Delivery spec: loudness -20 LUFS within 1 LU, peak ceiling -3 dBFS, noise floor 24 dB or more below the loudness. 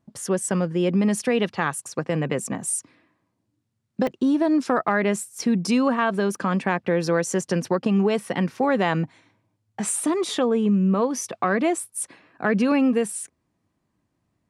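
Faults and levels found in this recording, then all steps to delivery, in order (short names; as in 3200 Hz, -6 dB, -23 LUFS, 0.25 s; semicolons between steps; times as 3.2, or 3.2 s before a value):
dropouts 3; longest dropout 1.1 ms; loudness -23.5 LUFS; peak -7.0 dBFS; loudness target -20.0 LUFS
-> interpolate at 4.07/6.35/9.89, 1.1 ms; gain +3.5 dB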